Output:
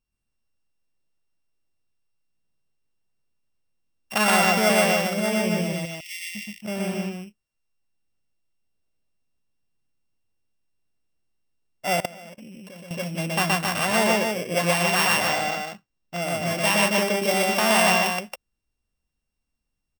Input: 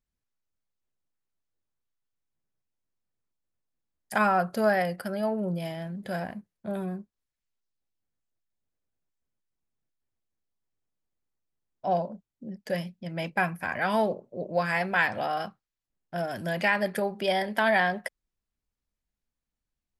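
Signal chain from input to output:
samples sorted by size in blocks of 16 samples
0:05.73–0:06.35: linear-phase brick-wall high-pass 1,800 Hz
loudspeakers that aren't time-aligned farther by 42 metres 0 dB, 94 metres −4 dB
0:12.00–0:12.91: output level in coarse steps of 22 dB
0:15.27–0:16.22: parametric band 11,000 Hz −9 dB 0.49 octaves
level +2 dB

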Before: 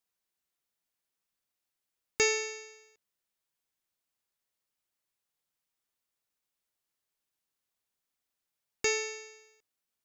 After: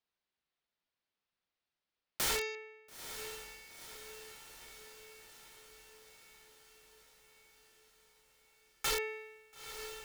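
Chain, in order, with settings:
low-pass filter 4,600 Hz 24 dB per octave, from 0:02.55 2,700 Hz
wrap-around overflow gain 27 dB
feedback delay with all-pass diffusion 929 ms, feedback 64%, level −9.5 dB

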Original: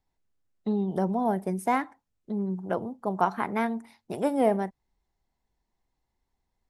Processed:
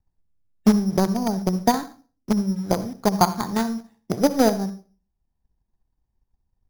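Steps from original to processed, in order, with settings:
hearing-aid frequency compression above 1,400 Hz 1.5 to 1
transient designer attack +9 dB, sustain −3 dB
bass and treble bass +10 dB, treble +2 dB
in parallel at −10 dB: log-companded quantiser 2 bits
on the sum: high-frequency loss of the air 300 metres
convolution reverb RT60 0.35 s, pre-delay 58 ms, DRR 13.5 dB
bad sample-rate conversion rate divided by 8×, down filtered, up hold
level −4 dB

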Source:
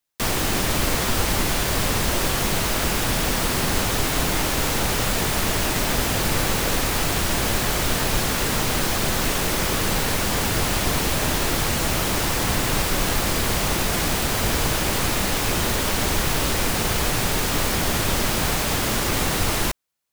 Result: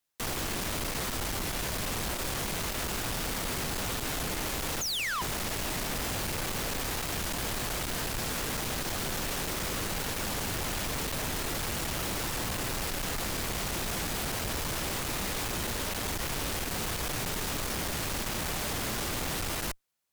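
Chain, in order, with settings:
sound drawn into the spectrogram fall, 0:04.81–0:05.22, 930–7,000 Hz −14 dBFS
tube saturation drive 31 dB, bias 0.45

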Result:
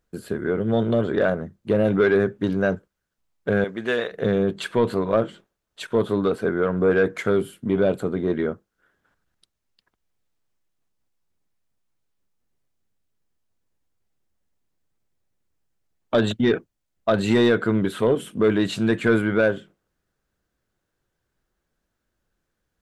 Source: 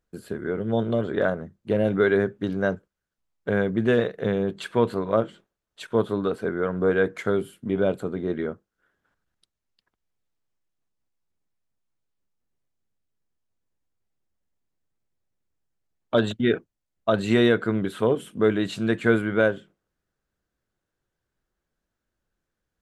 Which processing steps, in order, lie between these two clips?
0:03.64–0:04.12: high-pass filter 1,000 Hz 6 dB per octave
in parallel at −3 dB: brickwall limiter −14 dBFS, peak gain reduction 7.5 dB
on the sum: soft clipping −9 dBFS, distortion −19 dB

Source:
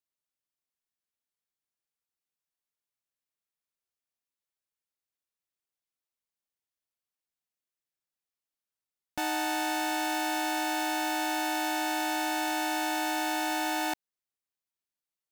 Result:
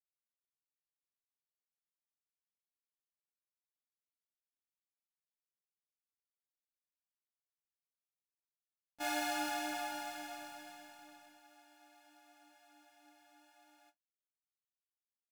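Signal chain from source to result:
source passing by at 0:06.63, 15 m/s, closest 20 metres
noise gate −37 dBFS, range −24 dB
multi-voice chorus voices 4, 0.64 Hz, delay 28 ms, depth 3.4 ms
every ending faded ahead of time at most 500 dB per second
level +5 dB

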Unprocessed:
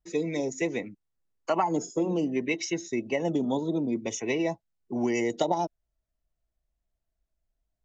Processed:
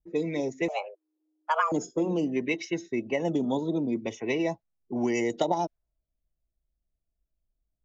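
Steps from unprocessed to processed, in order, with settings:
low-pass that shuts in the quiet parts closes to 480 Hz, open at −22.5 dBFS
0:00.68–0:01.72: frequency shifter +310 Hz

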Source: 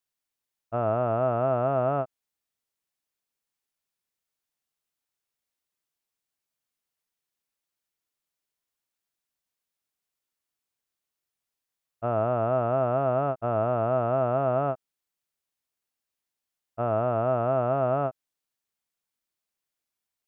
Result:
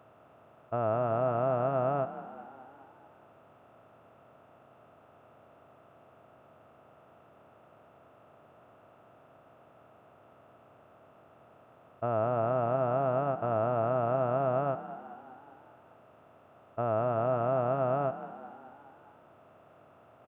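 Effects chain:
compressor on every frequency bin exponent 0.4
echo with shifted repeats 203 ms, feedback 60%, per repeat +35 Hz, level −14 dB
level −6 dB

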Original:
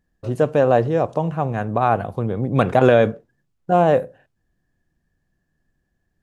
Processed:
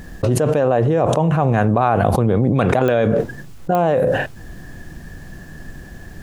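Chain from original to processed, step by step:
0:00.68–0:01.33: parametric band 4,800 Hz −9 dB 0.45 octaves
digital clicks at 0:02.88/0:03.75, −6 dBFS
envelope flattener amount 100%
level −4.5 dB

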